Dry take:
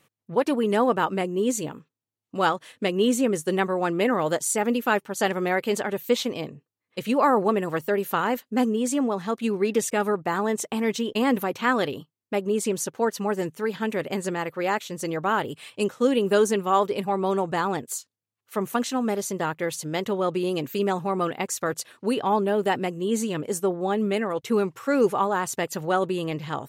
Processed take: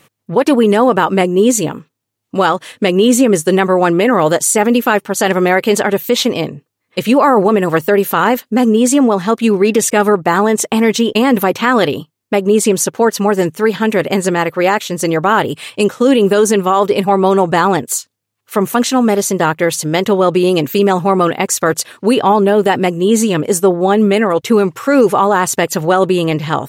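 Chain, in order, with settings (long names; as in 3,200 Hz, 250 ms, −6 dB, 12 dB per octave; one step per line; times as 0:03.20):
boost into a limiter +15 dB
level −1 dB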